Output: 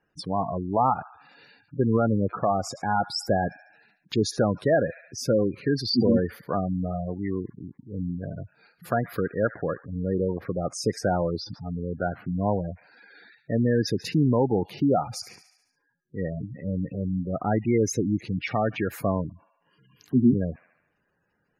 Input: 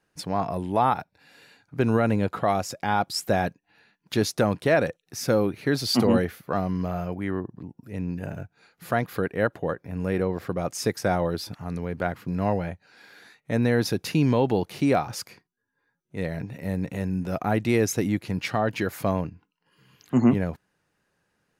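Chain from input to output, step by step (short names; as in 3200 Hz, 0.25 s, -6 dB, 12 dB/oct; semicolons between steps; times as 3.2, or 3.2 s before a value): thin delay 71 ms, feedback 59%, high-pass 1500 Hz, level -12.5 dB; spectral gate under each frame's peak -15 dB strong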